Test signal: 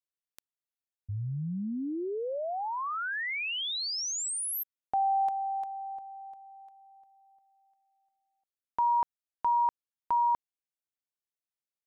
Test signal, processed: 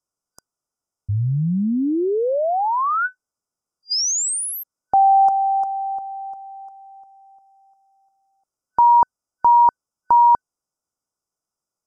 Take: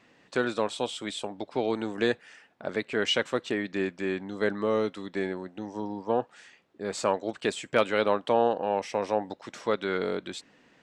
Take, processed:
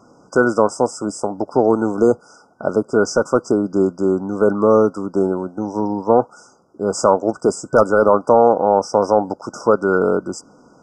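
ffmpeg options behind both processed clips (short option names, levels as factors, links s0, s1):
-af "lowpass=8400,apsyclip=6.31,afftfilt=real='re*(1-between(b*sr/4096,1500,4800))':imag='im*(1-between(b*sr/4096,1500,4800))':win_size=4096:overlap=0.75,volume=0.75"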